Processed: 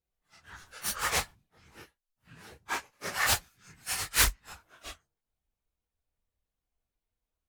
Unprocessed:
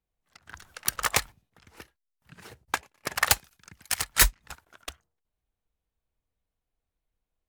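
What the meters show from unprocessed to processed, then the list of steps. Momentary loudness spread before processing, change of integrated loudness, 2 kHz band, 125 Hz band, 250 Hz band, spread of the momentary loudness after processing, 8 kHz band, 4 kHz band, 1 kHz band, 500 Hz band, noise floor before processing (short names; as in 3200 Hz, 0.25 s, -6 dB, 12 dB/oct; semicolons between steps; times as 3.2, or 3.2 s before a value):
22 LU, -3.5 dB, -2.5 dB, -2.5 dB, -2.5 dB, 21 LU, -3.5 dB, -2.0 dB, -2.5 dB, -2.0 dB, under -85 dBFS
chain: phase scrambler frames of 0.1 s; Doppler distortion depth 0.92 ms; gain -2.5 dB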